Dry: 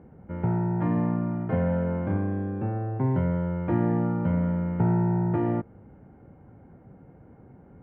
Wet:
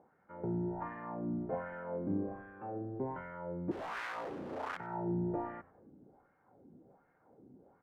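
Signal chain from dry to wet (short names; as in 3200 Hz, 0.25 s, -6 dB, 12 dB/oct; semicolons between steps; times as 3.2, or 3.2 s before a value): 3.71–4.77 wrapped overs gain 26.5 dB; wah 1.3 Hz 270–1700 Hz, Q 2.2; frequency-shifting echo 95 ms, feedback 41%, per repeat -87 Hz, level -20.5 dB; gain -2 dB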